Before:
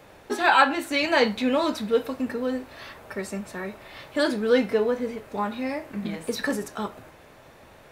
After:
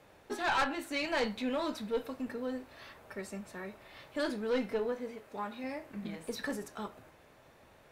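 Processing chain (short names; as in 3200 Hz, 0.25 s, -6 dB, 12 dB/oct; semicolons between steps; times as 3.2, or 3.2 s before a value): added harmonics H 2 -7 dB, 3 -21 dB, 8 -42 dB, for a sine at -5.5 dBFS; soft clip -16.5 dBFS, distortion -10 dB; 4.92–5.64 low shelf 160 Hz -8.5 dB; gain -7 dB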